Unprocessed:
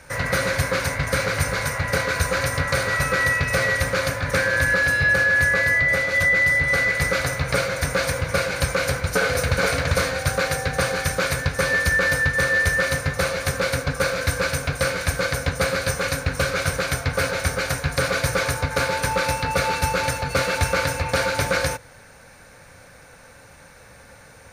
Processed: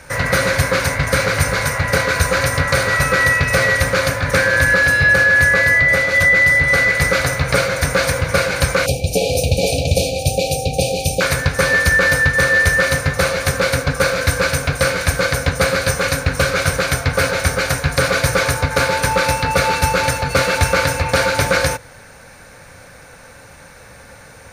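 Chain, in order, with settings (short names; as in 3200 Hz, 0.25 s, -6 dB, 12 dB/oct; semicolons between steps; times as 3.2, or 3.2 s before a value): 8.86–11.21 brick-wall FIR band-stop 840–2300 Hz; gain +6 dB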